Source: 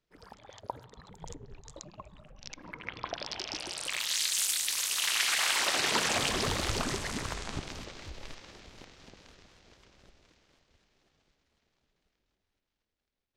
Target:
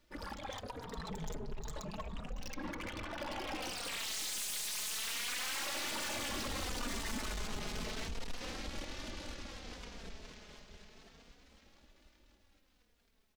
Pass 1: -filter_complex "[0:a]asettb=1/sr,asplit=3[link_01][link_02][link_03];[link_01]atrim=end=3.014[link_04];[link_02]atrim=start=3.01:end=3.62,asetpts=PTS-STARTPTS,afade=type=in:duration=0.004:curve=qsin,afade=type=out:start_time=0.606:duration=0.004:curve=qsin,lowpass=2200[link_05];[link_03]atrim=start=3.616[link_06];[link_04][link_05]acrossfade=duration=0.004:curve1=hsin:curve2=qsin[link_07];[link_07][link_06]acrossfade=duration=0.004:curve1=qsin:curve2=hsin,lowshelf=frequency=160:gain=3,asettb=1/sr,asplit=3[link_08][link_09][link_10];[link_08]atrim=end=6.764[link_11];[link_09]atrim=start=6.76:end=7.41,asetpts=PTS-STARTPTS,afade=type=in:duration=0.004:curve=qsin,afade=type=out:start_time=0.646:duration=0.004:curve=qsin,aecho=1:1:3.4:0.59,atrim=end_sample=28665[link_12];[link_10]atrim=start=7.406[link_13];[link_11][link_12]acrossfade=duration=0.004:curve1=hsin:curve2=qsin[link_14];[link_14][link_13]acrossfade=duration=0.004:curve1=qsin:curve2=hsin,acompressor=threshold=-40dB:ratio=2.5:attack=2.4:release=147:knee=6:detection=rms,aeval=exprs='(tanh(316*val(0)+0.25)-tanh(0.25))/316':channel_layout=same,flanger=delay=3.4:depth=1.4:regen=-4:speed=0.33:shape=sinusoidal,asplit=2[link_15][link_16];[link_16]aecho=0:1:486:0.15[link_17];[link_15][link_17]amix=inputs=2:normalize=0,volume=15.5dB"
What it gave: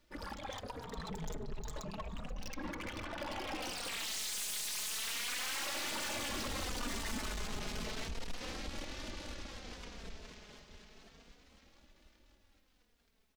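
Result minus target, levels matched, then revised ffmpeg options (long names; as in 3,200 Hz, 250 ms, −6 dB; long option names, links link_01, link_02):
echo 198 ms early
-filter_complex "[0:a]asettb=1/sr,asplit=3[link_01][link_02][link_03];[link_01]atrim=end=3.014[link_04];[link_02]atrim=start=3.01:end=3.62,asetpts=PTS-STARTPTS,afade=type=in:duration=0.004:curve=qsin,afade=type=out:start_time=0.606:duration=0.004:curve=qsin,lowpass=2200[link_05];[link_03]atrim=start=3.616[link_06];[link_04][link_05]acrossfade=duration=0.004:curve1=hsin:curve2=qsin[link_07];[link_07][link_06]acrossfade=duration=0.004:curve1=qsin:curve2=hsin,lowshelf=frequency=160:gain=3,asettb=1/sr,asplit=3[link_08][link_09][link_10];[link_08]atrim=end=6.764[link_11];[link_09]atrim=start=6.76:end=7.41,asetpts=PTS-STARTPTS,afade=type=in:duration=0.004:curve=qsin,afade=type=out:start_time=0.646:duration=0.004:curve=qsin,aecho=1:1:3.4:0.59,atrim=end_sample=28665[link_12];[link_10]atrim=start=7.406[link_13];[link_11][link_12]acrossfade=duration=0.004:curve1=hsin:curve2=qsin[link_14];[link_14][link_13]acrossfade=duration=0.004:curve1=qsin:curve2=hsin,acompressor=threshold=-40dB:ratio=2.5:attack=2.4:release=147:knee=6:detection=rms,aeval=exprs='(tanh(316*val(0)+0.25)-tanh(0.25))/316':channel_layout=same,flanger=delay=3.4:depth=1.4:regen=-4:speed=0.33:shape=sinusoidal,asplit=2[link_15][link_16];[link_16]aecho=0:1:684:0.15[link_17];[link_15][link_17]amix=inputs=2:normalize=0,volume=15.5dB"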